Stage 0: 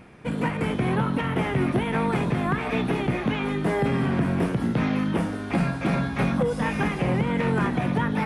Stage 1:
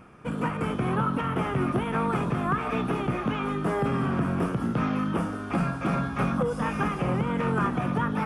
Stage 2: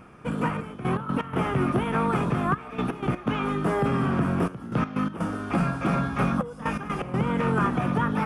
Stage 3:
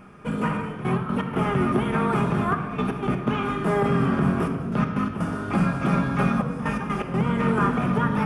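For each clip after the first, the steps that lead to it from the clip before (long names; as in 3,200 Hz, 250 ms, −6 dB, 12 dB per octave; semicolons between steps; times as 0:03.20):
thirty-one-band graphic EQ 1,250 Hz +10 dB, 2,000 Hz −6 dB, 4,000 Hz −8 dB; level −3 dB
gate pattern "xxxxx..x.x.xxxxx" 124 BPM −12 dB; level +2 dB
rectangular room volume 2,600 cubic metres, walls mixed, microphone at 1.3 metres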